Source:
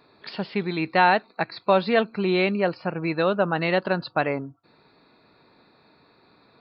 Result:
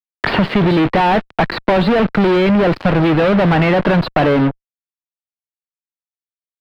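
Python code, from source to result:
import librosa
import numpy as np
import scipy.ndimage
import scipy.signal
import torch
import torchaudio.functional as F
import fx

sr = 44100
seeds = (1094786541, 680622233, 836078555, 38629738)

y = fx.fuzz(x, sr, gain_db=45.0, gate_db=-42.0)
y = fx.air_absorb(y, sr, metres=400.0)
y = fx.band_squash(y, sr, depth_pct=70)
y = F.gain(torch.from_numpy(y), 3.0).numpy()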